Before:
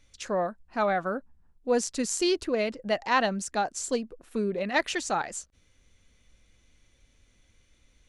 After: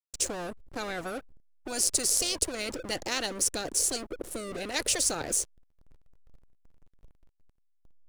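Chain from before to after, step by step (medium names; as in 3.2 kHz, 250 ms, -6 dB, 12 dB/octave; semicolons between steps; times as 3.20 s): FFT filter 110 Hz 0 dB, 190 Hz -11 dB, 300 Hz +8 dB, 510 Hz +12 dB, 980 Hz -24 dB, 3.6 kHz -11 dB, 8.3 kHz +9 dB; hysteresis with a dead band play -45.5 dBFS; spectrum-flattening compressor 10:1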